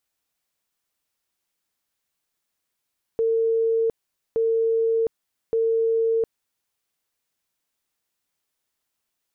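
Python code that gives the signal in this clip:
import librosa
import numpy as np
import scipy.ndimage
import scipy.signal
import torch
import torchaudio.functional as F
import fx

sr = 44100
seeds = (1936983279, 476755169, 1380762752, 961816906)

y = fx.tone_burst(sr, hz=453.0, cycles=321, every_s=1.17, bursts=3, level_db=-18.0)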